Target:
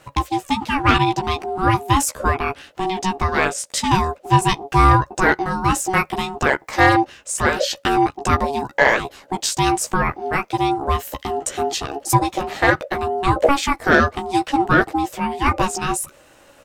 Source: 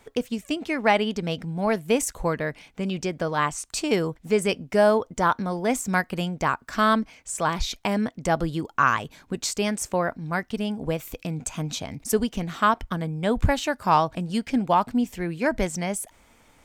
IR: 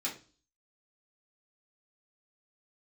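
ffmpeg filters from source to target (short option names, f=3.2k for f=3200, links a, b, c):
-filter_complex "[0:a]asplit=2[a][b];[b]adelay=14,volume=-4dB[c];[a][c]amix=inputs=2:normalize=0,acontrast=87,aeval=exprs='val(0)*sin(2*PI*560*n/s)':c=same,volume=1dB"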